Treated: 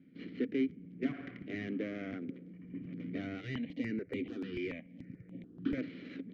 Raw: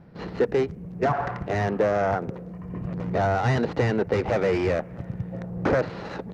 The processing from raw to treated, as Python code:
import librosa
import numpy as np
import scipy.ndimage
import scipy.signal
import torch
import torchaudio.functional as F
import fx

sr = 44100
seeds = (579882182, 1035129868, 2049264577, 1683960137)

y = fx.vowel_filter(x, sr, vowel='i')
y = fx.phaser_held(y, sr, hz=6.9, low_hz=240.0, high_hz=5200.0, at=(3.41, 5.78))
y = y * 10.0 ** (2.5 / 20.0)